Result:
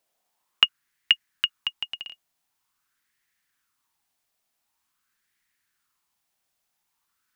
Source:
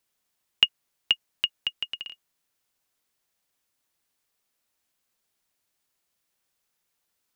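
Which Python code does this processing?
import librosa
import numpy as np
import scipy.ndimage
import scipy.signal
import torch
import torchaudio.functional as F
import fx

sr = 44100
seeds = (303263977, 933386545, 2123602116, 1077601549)

y = fx.peak_eq(x, sr, hz=fx.steps((0.0, 75.0), (0.64, 560.0)), db=-10.5, octaves=0.99)
y = fx.bell_lfo(y, sr, hz=0.46, low_hz=640.0, high_hz=1900.0, db=13)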